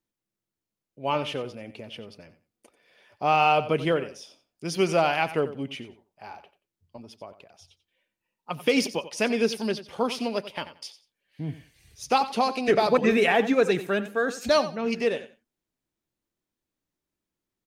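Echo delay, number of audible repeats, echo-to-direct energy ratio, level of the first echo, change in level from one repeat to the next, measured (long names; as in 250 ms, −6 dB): 90 ms, 2, −14.0 dB, −14.0 dB, −14.0 dB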